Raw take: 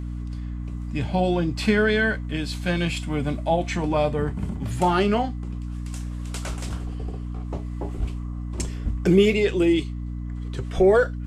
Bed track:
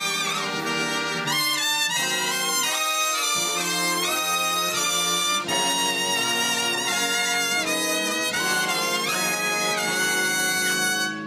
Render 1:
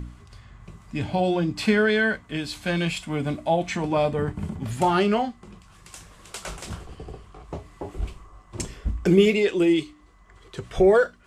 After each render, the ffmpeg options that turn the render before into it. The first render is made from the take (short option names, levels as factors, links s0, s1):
-af "bandreject=f=60:t=h:w=4,bandreject=f=120:t=h:w=4,bandreject=f=180:t=h:w=4,bandreject=f=240:t=h:w=4,bandreject=f=300:t=h:w=4"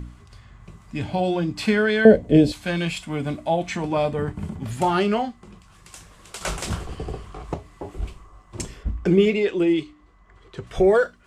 -filter_complex "[0:a]asettb=1/sr,asplit=3[s0][s1][s2];[s0]atrim=end=2.054[s3];[s1]atrim=start=2.05:end=2.52,asetpts=PTS-STARTPTS,afade=t=in:d=0.004:c=qsin,afade=t=out:st=0.466:d=0.004:c=qsin,lowshelf=f=800:t=q:w=3:g=13.5[s4];[s2]atrim=start=2.516[s5];[s3][s4]acrossfade=d=0.004:c1=hsin:c2=qsin[s6];[s6][s5]acrossfade=d=0.004:c1=qsin:c2=hsin,asettb=1/sr,asplit=3[s7][s8][s9];[s7]atrim=end=8.834[s10];[s8]atrim=start=8.83:end=10.67,asetpts=PTS-STARTPTS,afade=t=in:d=0.004:c=qsin,afade=t=out:st=1.836:d=0.004:c=qsin,aemphasis=mode=reproduction:type=50kf[s11];[s9]atrim=start=10.666[s12];[s10][s11]acrossfade=d=0.004:c1=hsin:c2=qsin[s13];[s13][s12]acrossfade=d=0.004:c1=qsin:c2=hsin,asplit=3[s14][s15][s16];[s14]atrim=end=6.412[s17];[s15]atrim=start=6.408:end=7.542,asetpts=PTS-STARTPTS,volume=2.37[s18];[s16]atrim=start=7.538[s19];[s17][s18]acrossfade=d=0.004:c1=hsin:c2=hsin[s20];[s20][s19]acrossfade=d=0.004:c1=hsin:c2=hsin"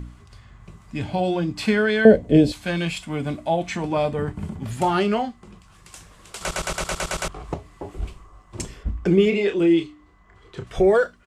-filter_complex "[0:a]asplit=3[s0][s1][s2];[s0]afade=t=out:st=9.31:d=0.02[s3];[s1]asplit=2[s4][s5];[s5]adelay=30,volume=0.501[s6];[s4][s6]amix=inputs=2:normalize=0,afade=t=in:st=9.31:d=0.02,afade=t=out:st=10.63:d=0.02[s7];[s2]afade=t=in:st=10.63:d=0.02[s8];[s3][s7][s8]amix=inputs=3:normalize=0,asplit=9[s9][s10][s11][s12][s13][s14][s15][s16][s17];[s9]atrim=end=6.512[s18];[s10]atrim=start=6.398:end=6.512[s19];[s11]atrim=start=6.398:end=6.512[s20];[s12]atrim=start=6.398:end=6.512[s21];[s13]atrim=start=6.398:end=6.512[s22];[s14]atrim=start=6.398:end=6.512[s23];[s15]atrim=start=6.398:end=6.512[s24];[s16]atrim=start=6.398:end=6.512[s25];[s17]atrim=start=7.278[s26];[s18][s19]acrossfade=d=0.004:c1=hsin:c2=hsin[s27];[s27][s20]acrossfade=d=0.004:c1=hsin:c2=hsin[s28];[s28][s21]acrossfade=d=0.004:c1=hsin:c2=hsin[s29];[s29][s22]acrossfade=d=0.004:c1=hsin:c2=hsin[s30];[s30][s23]acrossfade=d=0.004:c1=hsin:c2=hsin[s31];[s31][s24]acrossfade=d=0.004:c1=hsin:c2=hsin[s32];[s32][s25]acrossfade=d=0.004:c1=hsin:c2=hsin[s33];[s33][s26]acrossfade=d=0.004:c1=hsin:c2=hsin"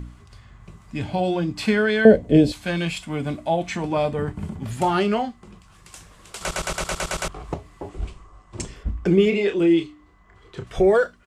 -filter_complex "[0:a]asettb=1/sr,asplit=3[s0][s1][s2];[s0]atrim=end=7.894[s3];[s1]atrim=start=7.89:end=8.76,asetpts=PTS-STARTPTS,afade=t=in:d=0.004:c=qsin,afade=t=out:st=0.866:d=0.004:c=qsin,lowpass=f=9500:w=0.5412,lowpass=f=9500:w=1.3066[s4];[s2]atrim=start=8.756[s5];[s3][s4]acrossfade=d=0.004:c1=hsin:c2=qsin[s6];[s6][s5]acrossfade=d=0.004:c1=qsin:c2=hsin"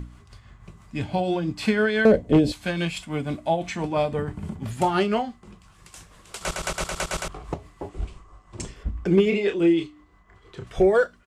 -af "tremolo=f=6:d=0.41,asoftclip=type=hard:threshold=0.335"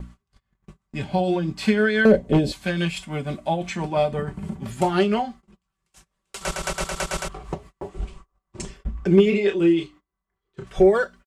-af "agate=range=0.0398:threshold=0.00794:ratio=16:detection=peak,aecho=1:1:5.2:0.5"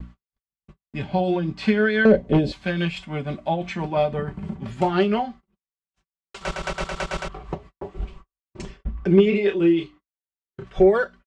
-af "agate=range=0.0224:threshold=0.0112:ratio=3:detection=peak,lowpass=4100"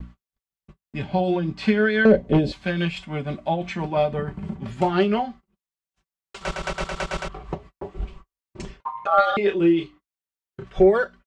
-filter_complex "[0:a]asettb=1/sr,asplit=3[s0][s1][s2];[s0]atrim=end=8.804[s3];[s1]atrim=start=8.8:end=9.37,asetpts=PTS-STARTPTS,afade=t=in:d=0.004:c=qsin,afade=t=out:st=0.566:d=0.004:c=qsin,aeval=exprs='val(0)*sin(2*PI*990*n/s)':c=same[s4];[s2]atrim=start=9.366[s5];[s3][s4]acrossfade=d=0.004:c1=hsin:c2=qsin[s6];[s6][s5]acrossfade=d=0.004:c1=qsin:c2=hsin"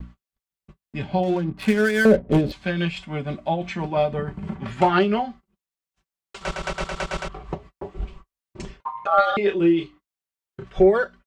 -filter_complex "[0:a]asettb=1/sr,asplit=3[s0][s1][s2];[s0]atrim=end=1.234[s3];[s1]atrim=start=1.23:end=2.52,asetpts=PTS-STARTPTS,afade=t=in:d=0.004:c=qsin,afade=t=out:st=1.286:d=0.004:c=qsin,adynamicsmooth=sensitivity=7.5:basefreq=770[s4];[s2]atrim=start=2.516[s5];[s3][s4]acrossfade=d=0.004:c1=hsin:c2=qsin[s6];[s6][s5]acrossfade=d=0.004:c1=qsin:c2=hsin,asettb=1/sr,asplit=3[s7][s8][s9];[s7]atrim=end=4.474[s10];[s8]atrim=start=4.47:end=4.99,asetpts=PTS-STARTPTS,afade=t=in:d=0.004:c=qsin,afade=t=out:st=0.516:d=0.004:c=qsin,equalizer=f=1600:w=0.57:g=8.5[s11];[s9]atrim=start=4.986[s12];[s10][s11]acrossfade=d=0.004:c1=hsin:c2=qsin[s13];[s13][s12]acrossfade=d=0.004:c1=qsin:c2=hsin"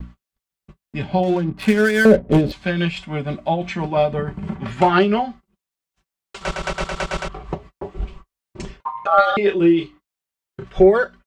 -af "volume=1.5,alimiter=limit=0.794:level=0:latency=1"